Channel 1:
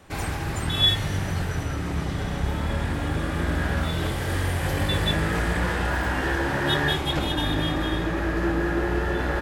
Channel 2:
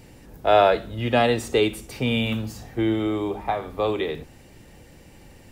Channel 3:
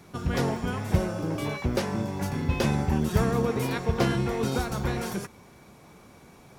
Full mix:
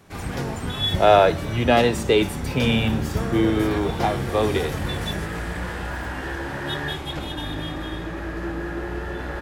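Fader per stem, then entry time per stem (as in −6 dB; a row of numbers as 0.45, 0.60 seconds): −5.0, +2.0, −3.0 decibels; 0.00, 0.55, 0.00 seconds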